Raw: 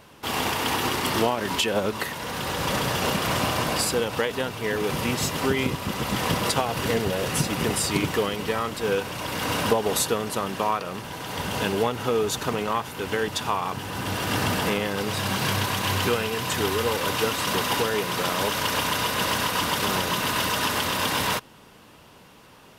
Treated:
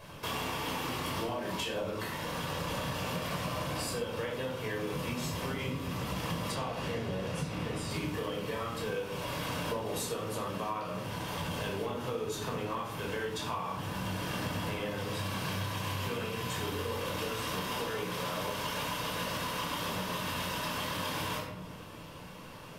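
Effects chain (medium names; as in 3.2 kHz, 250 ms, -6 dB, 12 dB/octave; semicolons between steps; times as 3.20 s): simulated room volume 850 m³, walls furnished, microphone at 5.4 m; compression 4:1, threshold -30 dBFS, peak gain reduction 17 dB; 6.54–7.89 s: treble shelf 11 kHz -> 7.4 kHz -12 dB; trim -5 dB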